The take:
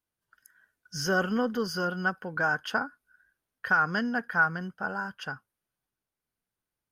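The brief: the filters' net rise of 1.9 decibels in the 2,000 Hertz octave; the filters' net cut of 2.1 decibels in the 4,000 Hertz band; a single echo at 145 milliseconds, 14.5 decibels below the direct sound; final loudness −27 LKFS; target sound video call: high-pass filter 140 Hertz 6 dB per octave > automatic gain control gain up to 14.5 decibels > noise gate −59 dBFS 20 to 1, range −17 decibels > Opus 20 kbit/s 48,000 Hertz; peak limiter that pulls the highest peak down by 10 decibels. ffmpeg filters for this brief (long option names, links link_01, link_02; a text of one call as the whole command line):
ffmpeg -i in.wav -af "equalizer=frequency=2000:width_type=o:gain=4,equalizer=frequency=4000:width_type=o:gain=-4.5,alimiter=limit=-20.5dB:level=0:latency=1,highpass=frequency=140:poles=1,aecho=1:1:145:0.188,dynaudnorm=maxgain=14.5dB,agate=range=-17dB:threshold=-59dB:ratio=20,volume=5dB" -ar 48000 -c:a libopus -b:a 20k out.opus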